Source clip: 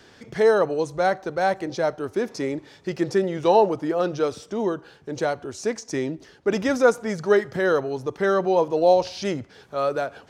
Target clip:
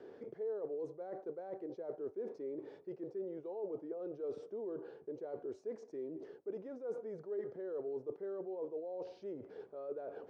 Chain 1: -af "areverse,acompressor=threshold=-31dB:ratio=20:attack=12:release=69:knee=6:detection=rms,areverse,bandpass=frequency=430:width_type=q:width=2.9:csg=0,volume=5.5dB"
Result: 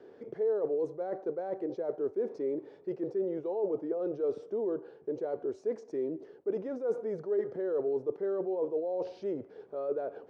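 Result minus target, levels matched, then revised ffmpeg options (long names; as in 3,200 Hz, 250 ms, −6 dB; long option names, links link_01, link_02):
downward compressor: peak gain reduction −10 dB
-af "areverse,acompressor=threshold=-41.5dB:ratio=20:attack=12:release=69:knee=6:detection=rms,areverse,bandpass=frequency=430:width_type=q:width=2.9:csg=0,volume=5.5dB"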